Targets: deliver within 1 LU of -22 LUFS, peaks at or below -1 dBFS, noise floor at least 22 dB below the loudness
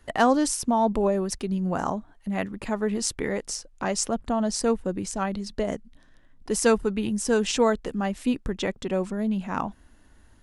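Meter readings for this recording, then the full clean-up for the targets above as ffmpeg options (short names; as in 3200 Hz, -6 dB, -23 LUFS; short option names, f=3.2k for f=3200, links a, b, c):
loudness -26.5 LUFS; peak -7.0 dBFS; loudness target -22.0 LUFS
-> -af "volume=4.5dB"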